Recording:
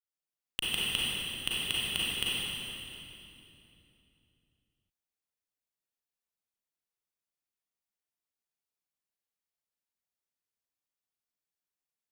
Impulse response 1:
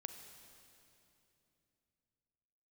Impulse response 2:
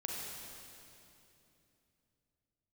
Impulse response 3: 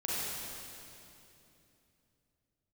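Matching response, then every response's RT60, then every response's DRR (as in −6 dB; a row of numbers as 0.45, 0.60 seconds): 3; 2.9, 2.9, 2.9 seconds; 7.0, −2.5, −8.0 decibels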